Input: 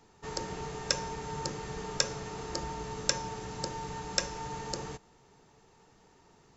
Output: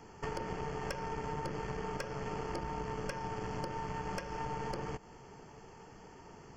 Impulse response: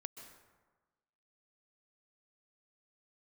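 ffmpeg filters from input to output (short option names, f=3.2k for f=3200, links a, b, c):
-filter_complex "[0:a]acrossover=split=4600[a][b];[b]acompressor=threshold=-59dB:ratio=4:attack=1:release=60[c];[a][c]amix=inputs=2:normalize=0,highshelf=f=4.4k:g=-8,acompressor=threshold=-45dB:ratio=6,aeval=exprs='(tanh(112*val(0)+0.75)-tanh(0.75))/112':c=same,asuperstop=centerf=3800:order=8:qfactor=4.4,volume=13dB"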